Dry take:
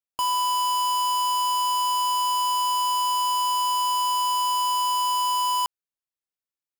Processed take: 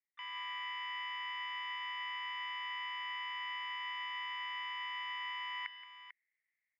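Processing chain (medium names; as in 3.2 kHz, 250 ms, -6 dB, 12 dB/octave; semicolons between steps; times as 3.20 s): level rider gain up to 12 dB; peak limiter -19 dBFS, peak gain reduction 7.5 dB; harmony voices +3 st -15 dB; Butterworth band-pass 2 kHz, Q 6.2; distance through air 75 m; multi-tap echo 174/445 ms -15/-12 dB; trim +12 dB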